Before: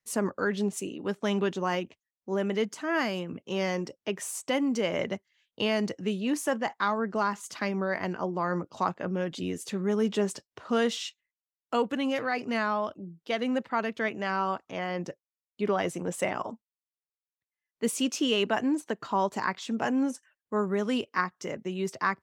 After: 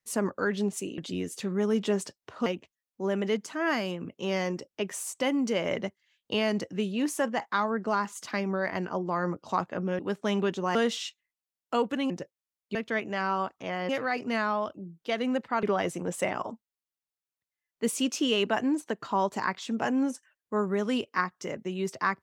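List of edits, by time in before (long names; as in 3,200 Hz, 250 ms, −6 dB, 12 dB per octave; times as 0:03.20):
0:00.98–0:01.74: swap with 0:09.27–0:10.75
0:12.10–0:13.84: swap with 0:14.98–0:15.63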